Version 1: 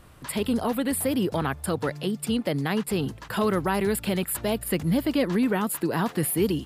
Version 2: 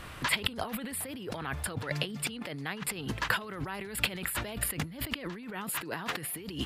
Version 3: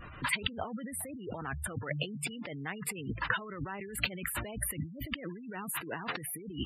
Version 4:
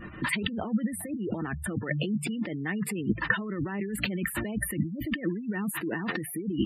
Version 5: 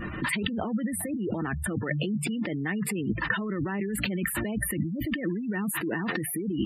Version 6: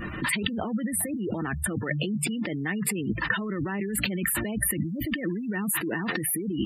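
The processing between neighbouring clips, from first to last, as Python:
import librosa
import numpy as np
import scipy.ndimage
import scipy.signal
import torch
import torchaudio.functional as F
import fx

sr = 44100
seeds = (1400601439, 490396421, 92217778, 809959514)

y1 = fx.over_compress(x, sr, threshold_db=-35.0, ratio=-1.0)
y1 = fx.peak_eq(y1, sr, hz=2300.0, db=9.5, octaves=2.4)
y1 = y1 * 10.0 ** (-4.0 / 20.0)
y2 = fx.notch(y1, sr, hz=3300.0, q=22.0)
y2 = fx.spec_gate(y2, sr, threshold_db=-15, keep='strong')
y2 = y2 * 10.0 ** (-1.5 / 20.0)
y3 = fx.small_body(y2, sr, hz=(210.0, 320.0, 1800.0), ring_ms=45, db=14)
y4 = fx.env_flatten(y3, sr, amount_pct=50)
y4 = y4 * 10.0 ** (-3.0 / 20.0)
y5 = fx.high_shelf(y4, sr, hz=3500.0, db=6.5)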